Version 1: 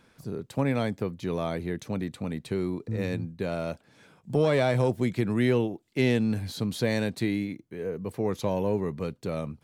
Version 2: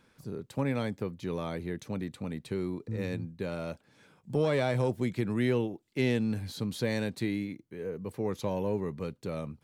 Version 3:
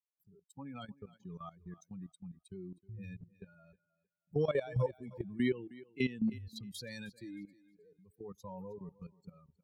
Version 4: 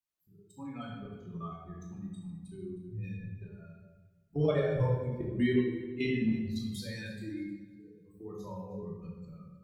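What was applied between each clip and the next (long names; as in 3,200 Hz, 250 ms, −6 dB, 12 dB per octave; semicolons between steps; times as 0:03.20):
notch filter 680 Hz, Q 12; level −4 dB
spectral dynamics exaggerated over time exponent 3; output level in coarse steps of 16 dB; feedback echo with a high-pass in the loop 313 ms, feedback 22%, high-pass 180 Hz, level −19 dB; level +3 dB
convolution reverb RT60 1.1 s, pre-delay 3 ms, DRR −5.5 dB; level −2.5 dB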